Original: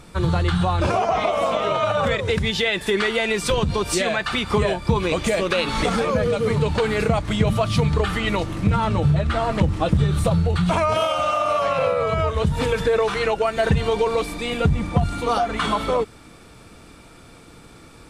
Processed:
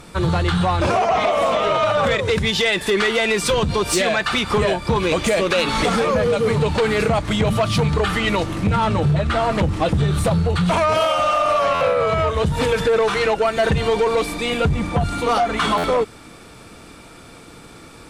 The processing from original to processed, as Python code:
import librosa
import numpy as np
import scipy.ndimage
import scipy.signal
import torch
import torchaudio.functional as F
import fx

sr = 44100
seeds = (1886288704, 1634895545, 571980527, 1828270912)

p1 = fx.low_shelf(x, sr, hz=130.0, db=-5.5)
p2 = fx.fold_sine(p1, sr, drive_db=9, ceiling_db=-7.5)
p3 = p1 + (p2 * 10.0 ** (-11.0 / 20.0))
p4 = fx.buffer_glitch(p3, sr, at_s=(11.74, 15.77), block=512, repeats=5)
y = p4 * 10.0 ** (-2.0 / 20.0)